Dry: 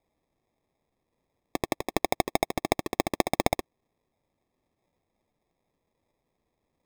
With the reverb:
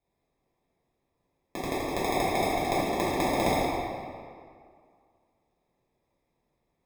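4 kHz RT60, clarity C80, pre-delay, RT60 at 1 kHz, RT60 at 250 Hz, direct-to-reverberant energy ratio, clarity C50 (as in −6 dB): 1.4 s, −0.5 dB, 3 ms, 2.1 s, 2.1 s, −11.0 dB, −3.0 dB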